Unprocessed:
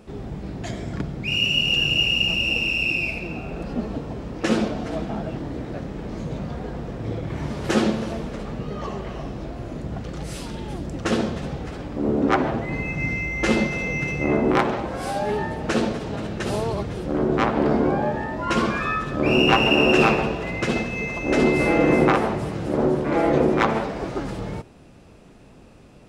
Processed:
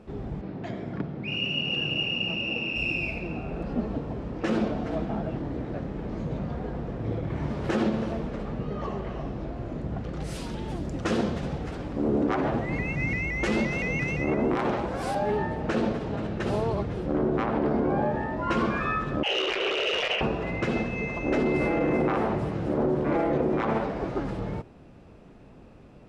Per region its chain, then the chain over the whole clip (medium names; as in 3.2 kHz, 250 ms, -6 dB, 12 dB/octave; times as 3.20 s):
0.41–2.76 s: high-pass 140 Hz + distance through air 130 m
10.20–15.15 s: treble shelf 4.6 kHz +10.5 dB + vibrato with a chosen wave saw up 5.8 Hz, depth 100 cents
19.23–20.21 s: hum notches 50/100/150/200/250/300/350/400/450 Hz + frequency inversion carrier 3.2 kHz + transformer saturation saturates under 3.3 kHz
whole clip: low-pass 2 kHz 6 dB/octave; peak limiter -15 dBFS; trim -1.5 dB